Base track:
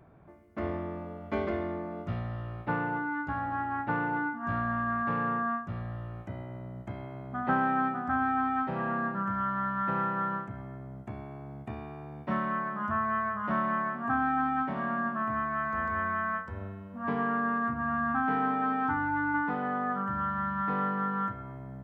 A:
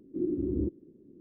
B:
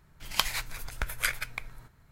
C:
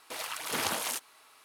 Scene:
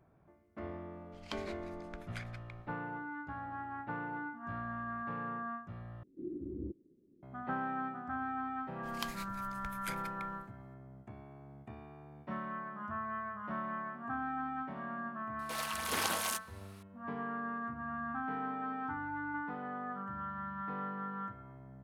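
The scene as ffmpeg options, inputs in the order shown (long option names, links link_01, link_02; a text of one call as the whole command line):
ffmpeg -i bed.wav -i cue0.wav -i cue1.wav -i cue2.wav -filter_complex "[2:a]asplit=2[link_01][link_02];[0:a]volume=-10dB[link_03];[link_01]lowpass=5200[link_04];[link_03]asplit=2[link_05][link_06];[link_05]atrim=end=6.034[link_07];[1:a]atrim=end=1.2,asetpts=PTS-STARTPTS,volume=-11.5dB[link_08];[link_06]atrim=start=7.226[link_09];[link_04]atrim=end=2.11,asetpts=PTS-STARTPTS,volume=-17.5dB,afade=type=in:duration=0.004:curve=hsin,afade=type=out:start_time=2.106:duration=0.004:curve=hsin,adelay=920[link_10];[link_02]atrim=end=2.11,asetpts=PTS-STARTPTS,volume=-15dB,afade=type=in:duration=0.004:curve=hsin,afade=type=out:start_time=2.106:duration=0.004:curve=hsin,adelay=8630[link_11];[3:a]atrim=end=1.44,asetpts=PTS-STARTPTS,volume=-3dB,afade=type=in:duration=0.004:curve=hsin,afade=type=out:start_time=1.436:duration=0.004:curve=hsin,adelay=15390[link_12];[link_07][link_08]acrossfade=duration=0.004:curve1=hsin:curve2=hsin[link_13];[link_13][link_09]acrossfade=duration=0.004:curve1=hsin:curve2=hsin[link_14];[link_14][link_10][link_11][link_12]amix=inputs=4:normalize=0" out.wav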